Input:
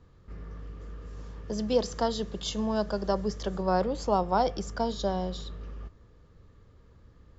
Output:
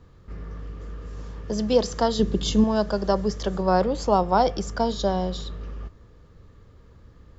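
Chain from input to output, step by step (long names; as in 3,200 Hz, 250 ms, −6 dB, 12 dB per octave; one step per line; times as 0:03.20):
0:02.19–0:02.64: low shelf with overshoot 460 Hz +7 dB, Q 1.5
level +5.5 dB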